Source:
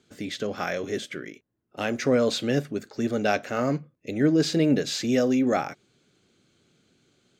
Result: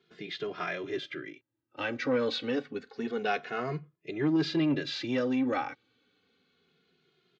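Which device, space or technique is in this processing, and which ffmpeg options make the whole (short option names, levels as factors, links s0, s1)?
barber-pole flanger into a guitar amplifier: -filter_complex "[0:a]asplit=2[s0][s1];[s1]adelay=2.4,afreqshift=-0.28[s2];[s0][s2]amix=inputs=2:normalize=1,asoftclip=type=tanh:threshold=0.15,highpass=92,equalizer=f=96:t=q:w=4:g=-5,equalizer=f=210:t=q:w=4:g=-9,equalizer=f=610:t=q:w=4:g=-8,lowpass=f=4200:w=0.5412,lowpass=f=4200:w=1.3066,lowshelf=f=250:g=-4,volume=1.12"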